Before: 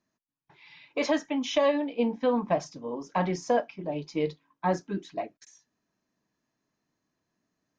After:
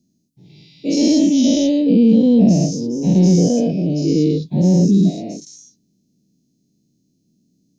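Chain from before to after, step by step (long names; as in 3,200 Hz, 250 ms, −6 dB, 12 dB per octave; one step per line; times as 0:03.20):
every bin's largest magnitude spread in time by 240 ms
Chebyshev band-stop filter 310–5,200 Hz, order 2
parametric band 180 Hz +8.5 dB 1.2 octaves
level +8 dB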